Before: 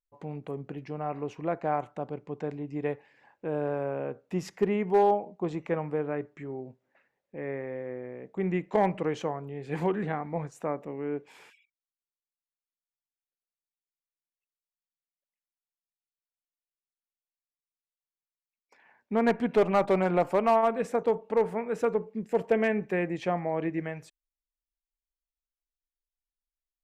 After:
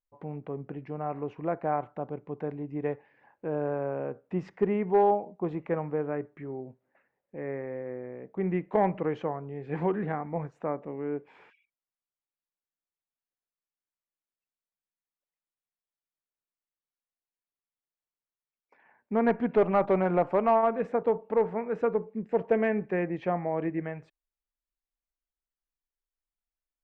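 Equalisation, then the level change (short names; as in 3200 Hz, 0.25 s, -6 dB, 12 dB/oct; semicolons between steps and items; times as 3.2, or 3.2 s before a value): LPF 2000 Hz 12 dB/oct; 0.0 dB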